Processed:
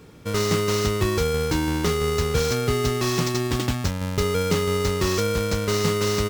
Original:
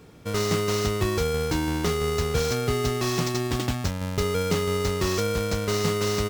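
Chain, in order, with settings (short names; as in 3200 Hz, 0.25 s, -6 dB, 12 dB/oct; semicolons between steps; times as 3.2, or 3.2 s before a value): bell 700 Hz -6 dB 0.21 oct; gain +2.5 dB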